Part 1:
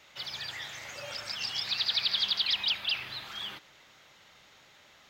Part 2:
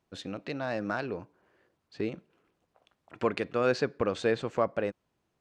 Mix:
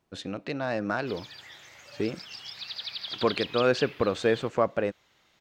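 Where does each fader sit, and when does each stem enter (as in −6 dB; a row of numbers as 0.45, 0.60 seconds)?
−8.0, +3.0 decibels; 0.90, 0.00 seconds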